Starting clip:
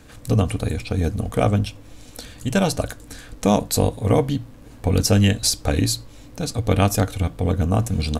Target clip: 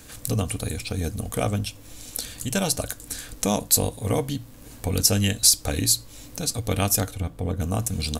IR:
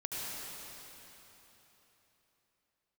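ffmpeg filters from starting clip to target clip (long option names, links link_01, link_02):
-filter_complex "[0:a]asettb=1/sr,asplit=3[link_01][link_02][link_03];[link_01]atrim=end=7.104[link_04];[link_02]atrim=start=7.1:end=7.6,asetpts=PTS-STARTPTS,afade=type=in:duration=0.004:curve=qsin,afade=type=out:start_time=0.496:duration=0.004:curve=qsin,highshelf=frequency=2400:gain=-11[link_05];[link_03]atrim=start=7.596[link_06];[link_04][link_05]acrossfade=duration=0.004:curve1=hsin:curve2=qsin[link_07];[link_07][link_06]acrossfade=duration=0.004:curve1=qsin:curve2=hsin,asplit=2[link_08][link_09];[link_09]acompressor=threshold=-32dB:ratio=6,volume=0.5dB[link_10];[link_08][link_10]amix=inputs=2:normalize=0,crystalizer=i=3:c=0,volume=-8dB"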